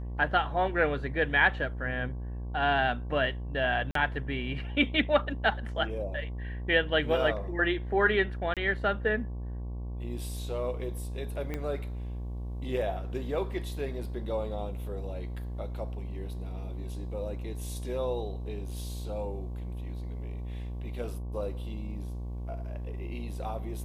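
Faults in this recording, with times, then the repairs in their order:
buzz 60 Hz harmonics 19 -36 dBFS
3.91–3.95 gap 43 ms
8.54–8.57 gap 27 ms
11.54 pop -21 dBFS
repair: de-click; de-hum 60 Hz, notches 19; interpolate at 3.91, 43 ms; interpolate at 8.54, 27 ms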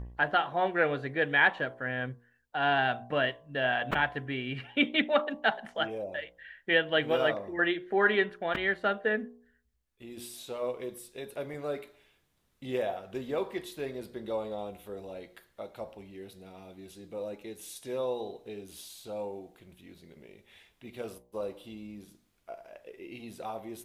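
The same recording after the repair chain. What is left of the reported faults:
11.54 pop

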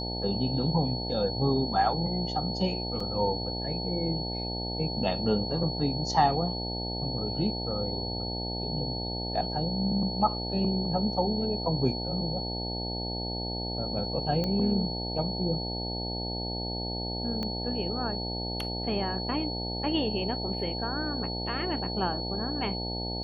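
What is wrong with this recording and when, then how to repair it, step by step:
buzz 60 Hz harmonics 15 -35 dBFS
tone 4400 Hz -35 dBFS
3 gap 4.2 ms
14.44 pop -18 dBFS
17.43 pop -21 dBFS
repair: de-click; notch 4400 Hz, Q 30; de-hum 60 Hz, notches 15; interpolate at 3, 4.2 ms

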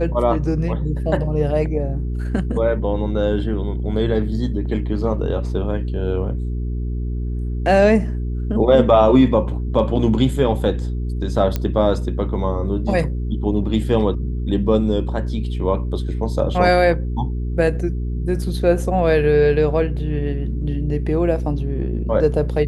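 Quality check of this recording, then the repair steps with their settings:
hum 60 Hz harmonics 7 -23 dBFS
11.56 pop -8 dBFS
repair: de-click; de-hum 60 Hz, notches 7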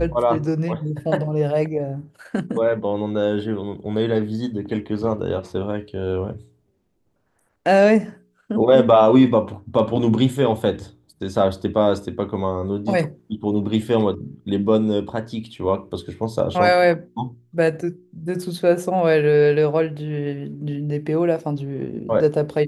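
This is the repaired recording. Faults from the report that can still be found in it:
none

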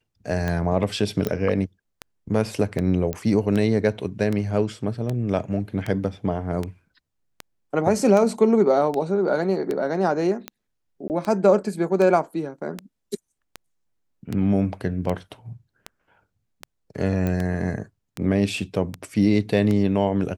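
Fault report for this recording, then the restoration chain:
tick 78 rpm -14 dBFS
1.27 pop -12 dBFS
3.13 pop -14 dBFS
11.08–11.1 gap 19 ms
17.27 pop -14 dBFS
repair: de-click; interpolate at 11.08, 19 ms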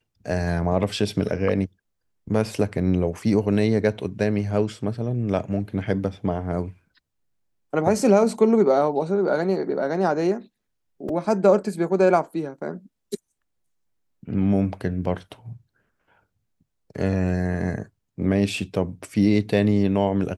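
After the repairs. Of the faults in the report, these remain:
17.27 pop

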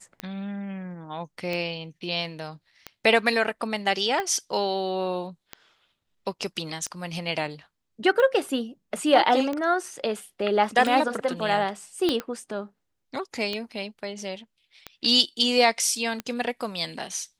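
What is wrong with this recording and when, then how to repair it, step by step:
tick 45 rpm -16 dBFS
12.09 pop -11 dBFS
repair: de-click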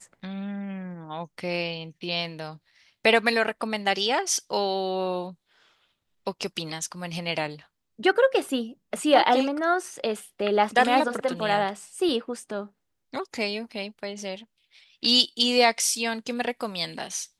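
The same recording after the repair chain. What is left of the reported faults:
12.09 pop

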